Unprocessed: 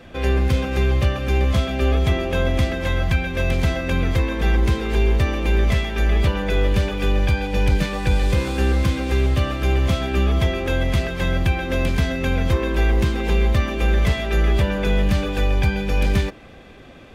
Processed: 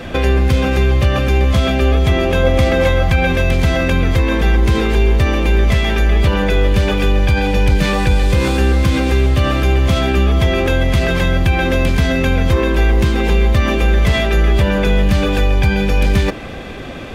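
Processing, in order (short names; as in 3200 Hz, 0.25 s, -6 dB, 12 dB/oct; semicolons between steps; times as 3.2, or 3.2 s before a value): in parallel at -1.5 dB: negative-ratio compressor -29 dBFS, ratio -1; 2.43–3.32 on the sum: small resonant body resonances 520/800/1200/2200 Hz, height 7 dB; gain +4 dB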